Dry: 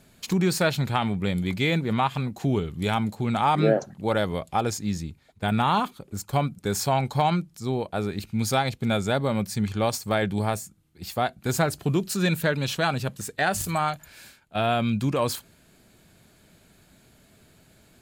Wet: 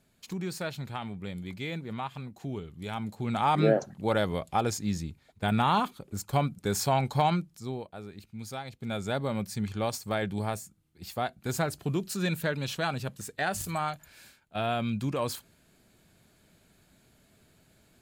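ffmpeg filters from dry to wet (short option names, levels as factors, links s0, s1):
-af "volume=2.11,afade=t=in:st=2.87:d=0.73:silence=0.334965,afade=t=out:st=7.25:d=0.71:silence=0.237137,afade=t=in:st=8.69:d=0.47:silence=0.354813"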